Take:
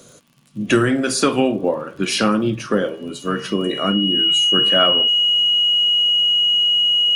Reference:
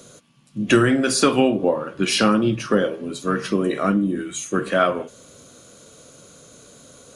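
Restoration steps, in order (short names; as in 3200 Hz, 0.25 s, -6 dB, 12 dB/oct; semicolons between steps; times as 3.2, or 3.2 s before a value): de-click; notch 2900 Hz, Q 30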